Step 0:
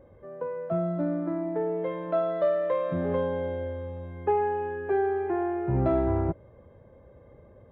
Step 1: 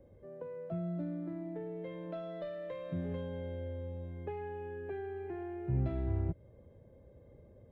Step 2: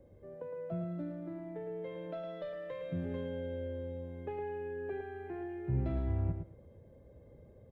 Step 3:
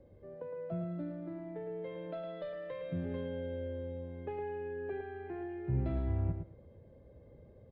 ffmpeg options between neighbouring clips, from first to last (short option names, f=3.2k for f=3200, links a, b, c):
-filter_complex "[0:a]equalizer=f=1.2k:w=0.94:g=-12,acrossover=split=190|1300[a][b][c];[b]acompressor=threshold=-38dB:ratio=6[d];[a][d][c]amix=inputs=3:normalize=0,volume=-3.5dB"
-af "aecho=1:1:111|222|333:0.447|0.0804|0.0145"
-af "aresample=11025,aresample=44100"